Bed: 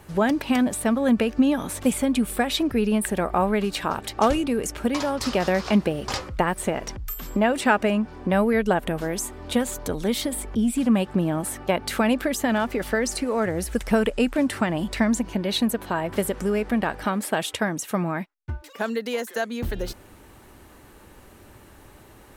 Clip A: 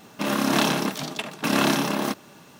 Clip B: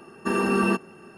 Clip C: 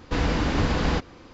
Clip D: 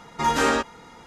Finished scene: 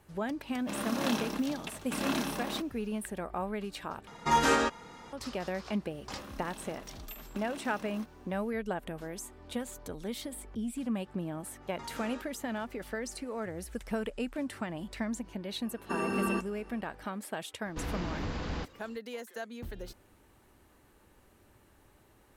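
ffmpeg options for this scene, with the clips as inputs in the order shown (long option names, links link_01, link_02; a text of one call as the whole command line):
ffmpeg -i bed.wav -i cue0.wav -i cue1.wav -i cue2.wav -i cue3.wav -filter_complex "[1:a]asplit=2[link_01][link_02];[4:a]asplit=2[link_03][link_04];[0:a]volume=-13.5dB[link_05];[link_03]alimiter=limit=-11dB:level=0:latency=1:release=235[link_06];[link_02]acompressor=threshold=-27dB:ratio=6:attack=3.2:release=140:knee=1:detection=peak[link_07];[link_04]acompressor=threshold=-28dB:ratio=6:attack=3.2:release=140:knee=1:detection=peak[link_08];[3:a]asoftclip=type=tanh:threshold=-15.5dB[link_09];[link_05]asplit=2[link_10][link_11];[link_10]atrim=end=4.074[link_12];[link_06]atrim=end=1.06,asetpts=PTS-STARTPTS,volume=-3dB[link_13];[link_11]atrim=start=5.126[link_14];[link_01]atrim=end=2.59,asetpts=PTS-STARTPTS,volume=-12dB,afade=type=in:duration=0.004:curve=hsin,afade=type=out:start_time=2.586:duration=0.004:curve=hsin,adelay=480[link_15];[link_07]atrim=end=2.59,asetpts=PTS-STARTPTS,volume=-17dB,afade=type=in:duration=0.004:curve=hsin,afade=type=out:start_time=2.586:duration=0.004:curve=hsin,adelay=5920[link_16];[link_08]atrim=end=1.06,asetpts=PTS-STARTPTS,volume=-14dB,afade=type=in:duration=0.05,afade=type=out:start_time=1.01:duration=0.05,adelay=11600[link_17];[2:a]atrim=end=1.17,asetpts=PTS-STARTPTS,volume=-9dB,afade=type=in:duration=0.004:curve=hsin,afade=type=out:start_time=1.166:duration=0.004:curve=hsin,adelay=15640[link_18];[link_09]atrim=end=1.33,asetpts=PTS-STARTPTS,volume=-11.5dB,afade=type=in:duration=0.004:curve=hsin,afade=type=out:start_time=1.326:duration=0.004:curve=hsin,adelay=17650[link_19];[link_12][link_13]acrossfade=duration=0.004:curve1=hsin:curve2=hsin[link_20];[link_20][link_14]acrossfade=duration=0.004:curve1=hsin:curve2=hsin[link_21];[link_21][link_15][link_16][link_17][link_18][link_19]amix=inputs=6:normalize=0" out.wav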